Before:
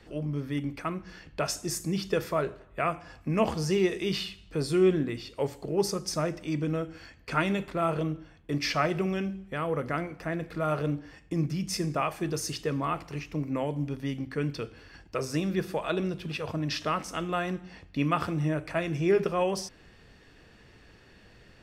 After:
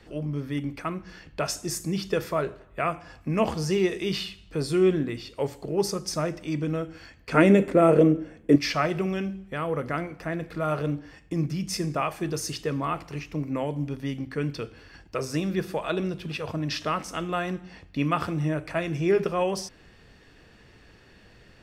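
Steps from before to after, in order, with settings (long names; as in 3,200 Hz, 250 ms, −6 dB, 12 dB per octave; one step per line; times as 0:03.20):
0:07.34–0:08.56: graphic EQ with 10 bands 250 Hz +12 dB, 500 Hz +12 dB, 1,000 Hz −3 dB, 2,000 Hz +6 dB, 4,000 Hz −6 dB, 8,000 Hz +7 dB
level +1.5 dB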